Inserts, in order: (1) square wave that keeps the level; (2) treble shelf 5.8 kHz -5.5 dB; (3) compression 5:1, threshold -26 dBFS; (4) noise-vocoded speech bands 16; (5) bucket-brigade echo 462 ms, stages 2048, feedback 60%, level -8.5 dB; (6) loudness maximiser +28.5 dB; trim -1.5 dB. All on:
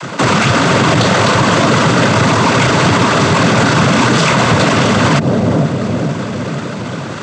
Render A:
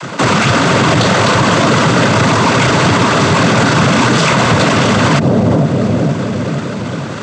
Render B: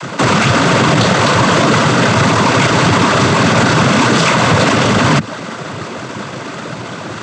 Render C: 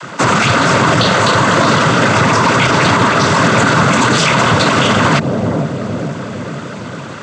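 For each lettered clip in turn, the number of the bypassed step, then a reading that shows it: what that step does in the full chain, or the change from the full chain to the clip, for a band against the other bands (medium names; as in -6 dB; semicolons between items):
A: 3, mean gain reduction 2.5 dB; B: 5, momentary loudness spread change +5 LU; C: 1, distortion -5 dB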